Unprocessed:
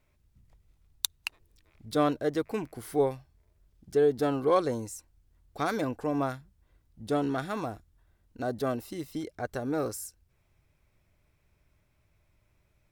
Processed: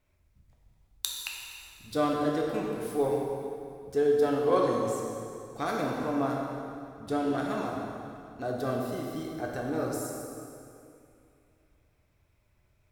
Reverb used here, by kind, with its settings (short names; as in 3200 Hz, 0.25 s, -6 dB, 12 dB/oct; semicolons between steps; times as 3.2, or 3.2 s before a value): plate-style reverb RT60 2.6 s, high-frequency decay 0.8×, DRR -2 dB; gain -3.5 dB